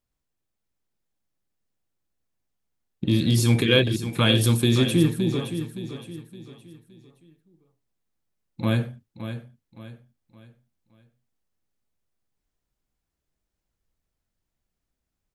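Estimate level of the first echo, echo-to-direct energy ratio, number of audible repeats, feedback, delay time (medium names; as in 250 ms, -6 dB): -10.5 dB, -10.0 dB, 3, 37%, 567 ms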